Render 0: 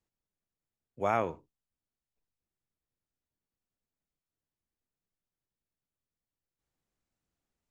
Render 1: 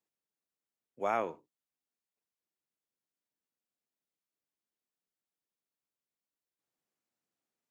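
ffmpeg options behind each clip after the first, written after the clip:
ffmpeg -i in.wav -af "highpass=230,volume=-2.5dB" out.wav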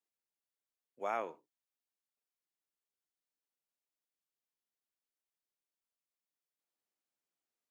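ffmpeg -i in.wav -af "equalizer=frequency=76:width_type=o:width=2.7:gain=-13,volume=-4dB" out.wav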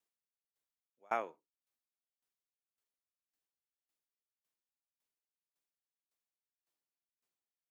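ffmpeg -i in.wav -af "aeval=exprs='val(0)*pow(10,-33*if(lt(mod(1.8*n/s,1),2*abs(1.8)/1000),1-mod(1.8*n/s,1)/(2*abs(1.8)/1000),(mod(1.8*n/s,1)-2*abs(1.8)/1000)/(1-2*abs(1.8)/1000))/20)':channel_layout=same,volume=4.5dB" out.wav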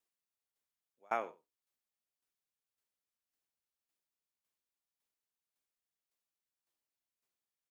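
ffmpeg -i in.wav -af "aecho=1:1:92:0.106" out.wav

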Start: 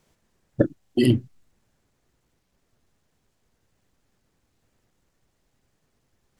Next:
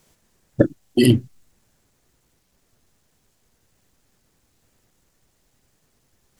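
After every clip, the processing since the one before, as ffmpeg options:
ffmpeg -i in.wav -af "highshelf=frequency=5100:gain=8.5,volume=4dB" out.wav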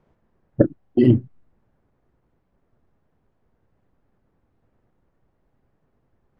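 ffmpeg -i in.wav -af "lowpass=1200" out.wav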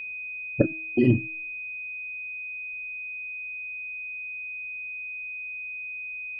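ffmpeg -i in.wav -af "bandreject=frequency=320.8:width_type=h:width=4,bandreject=frequency=641.6:width_type=h:width=4,bandreject=frequency=962.4:width_type=h:width=4,bandreject=frequency=1283.2:width_type=h:width=4,bandreject=frequency=1604:width_type=h:width=4,bandreject=frequency=1924.8:width_type=h:width=4,bandreject=frequency=2245.6:width_type=h:width=4,bandreject=frequency=2566.4:width_type=h:width=4,bandreject=frequency=2887.2:width_type=h:width=4,bandreject=frequency=3208:width_type=h:width=4,bandreject=frequency=3528.8:width_type=h:width=4,bandreject=frequency=3849.6:width_type=h:width=4,bandreject=frequency=4170.4:width_type=h:width=4,bandreject=frequency=4491.2:width_type=h:width=4,bandreject=frequency=4812:width_type=h:width=4,bandreject=frequency=5132.8:width_type=h:width=4,bandreject=frequency=5453.6:width_type=h:width=4,bandreject=frequency=5774.4:width_type=h:width=4,bandreject=frequency=6095.2:width_type=h:width=4,bandreject=frequency=6416:width_type=h:width=4,bandreject=frequency=6736.8:width_type=h:width=4,bandreject=frequency=7057.6:width_type=h:width=4,bandreject=frequency=7378.4:width_type=h:width=4,bandreject=frequency=7699.2:width_type=h:width=4,bandreject=frequency=8020:width_type=h:width=4,bandreject=frequency=8340.8:width_type=h:width=4,bandreject=frequency=8661.6:width_type=h:width=4,bandreject=frequency=8982.4:width_type=h:width=4,bandreject=frequency=9303.2:width_type=h:width=4,aeval=exprs='val(0)+0.0398*sin(2*PI*2500*n/s)':channel_layout=same,volume=-5dB" out.wav

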